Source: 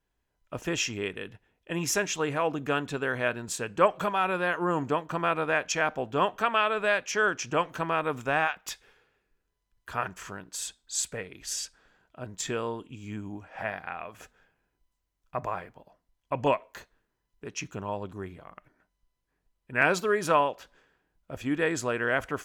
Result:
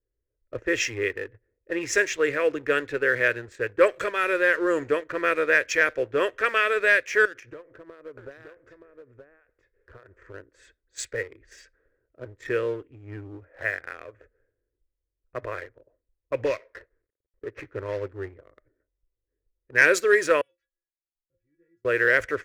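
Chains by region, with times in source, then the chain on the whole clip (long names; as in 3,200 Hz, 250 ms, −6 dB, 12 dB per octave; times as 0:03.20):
0:07.25–0:10.34: downward compressor 16 to 1, threshold −37 dBFS + single-tap delay 923 ms −4.5 dB
0:16.45–0:18.08: variable-slope delta modulation 32 kbit/s + parametric band 1,000 Hz +3.5 dB 2.1 octaves + downward compressor 4 to 1, threshold −24 dBFS
0:20.41–0:21.85: guitar amp tone stack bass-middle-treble 6-0-2 + stiff-string resonator 170 Hz, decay 0.22 s, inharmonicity 0.008
whole clip: low-pass that shuts in the quiet parts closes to 580 Hz, open at −21 dBFS; drawn EQ curve 110 Hz 0 dB, 180 Hz −21 dB, 340 Hz +1 dB, 530 Hz +5 dB, 790 Hz −19 dB, 1,900 Hz +10 dB, 3,000 Hz −4 dB, 7,600 Hz +5 dB; leveller curve on the samples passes 1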